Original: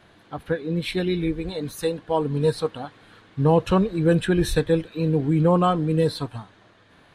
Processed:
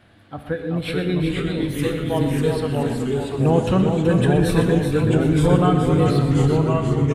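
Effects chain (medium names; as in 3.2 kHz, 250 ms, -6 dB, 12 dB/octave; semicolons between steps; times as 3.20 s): graphic EQ with 31 bands 100 Hz +10 dB, 250 Hz +5 dB, 400 Hz -5 dB, 1 kHz -6 dB, 4 kHz -3 dB, 6.3 kHz -7 dB; on a send: feedback delay 379 ms, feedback 35%, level -6.5 dB; on the sum: ever faster or slower copies 373 ms, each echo -2 st, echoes 3; echo from a far wall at 21 m, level -11 dB; Schroeder reverb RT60 1.1 s, combs from 28 ms, DRR 9.5 dB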